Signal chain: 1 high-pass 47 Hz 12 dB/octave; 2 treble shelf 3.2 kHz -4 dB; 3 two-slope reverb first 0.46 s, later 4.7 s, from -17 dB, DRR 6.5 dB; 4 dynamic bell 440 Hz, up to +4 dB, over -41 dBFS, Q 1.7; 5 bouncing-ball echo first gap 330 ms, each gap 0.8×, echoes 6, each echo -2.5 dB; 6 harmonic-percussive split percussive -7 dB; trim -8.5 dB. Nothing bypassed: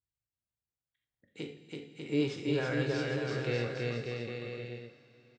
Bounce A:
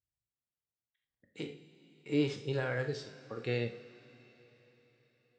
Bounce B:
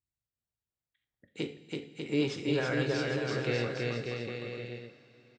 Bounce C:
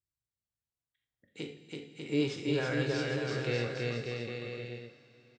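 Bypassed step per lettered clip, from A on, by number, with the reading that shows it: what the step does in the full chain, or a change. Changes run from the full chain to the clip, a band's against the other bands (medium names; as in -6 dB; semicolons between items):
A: 5, loudness change -1.5 LU; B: 6, 125 Hz band -2.5 dB; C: 2, 8 kHz band +3.0 dB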